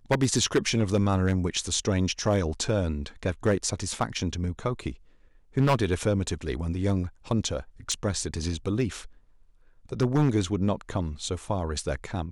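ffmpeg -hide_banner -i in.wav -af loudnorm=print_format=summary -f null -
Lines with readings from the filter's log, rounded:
Input Integrated:    -27.7 LUFS
Input True Peak:     -13.9 dBTP
Input LRA:             2.4 LU
Input Threshold:     -38.2 LUFS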